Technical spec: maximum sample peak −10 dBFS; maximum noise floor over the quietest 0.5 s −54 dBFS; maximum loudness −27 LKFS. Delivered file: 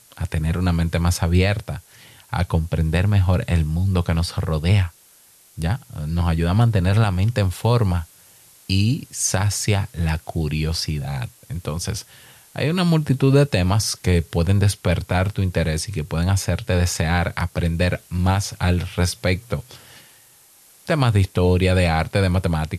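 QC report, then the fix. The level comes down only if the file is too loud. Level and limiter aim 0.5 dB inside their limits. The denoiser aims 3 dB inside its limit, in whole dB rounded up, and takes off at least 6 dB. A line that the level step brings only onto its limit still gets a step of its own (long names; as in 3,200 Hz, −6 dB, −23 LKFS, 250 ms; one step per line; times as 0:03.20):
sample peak −5.5 dBFS: out of spec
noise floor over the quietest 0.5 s −52 dBFS: out of spec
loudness −21.0 LKFS: out of spec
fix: level −6.5 dB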